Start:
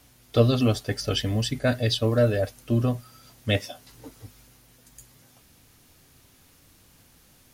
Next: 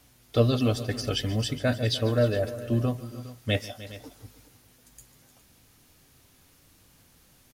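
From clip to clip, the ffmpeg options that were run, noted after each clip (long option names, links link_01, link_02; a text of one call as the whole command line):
ffmpeg -i in.wav -af "aecho=1:1:146|304|411:0.133|0.15|0.141,volume=-2.5dB" out.wav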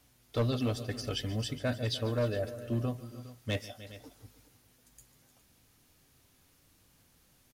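ffmpeg -i in.wav -af "volume=17.5dB,asoftclip=hard,volume=-17.5dB,volume=-6.5dB" out.wav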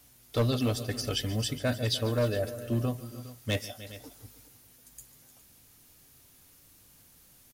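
ffmpeg -i in.wav -af "highshelf=frequency=7200:gain=10,volume=3dB" out.wav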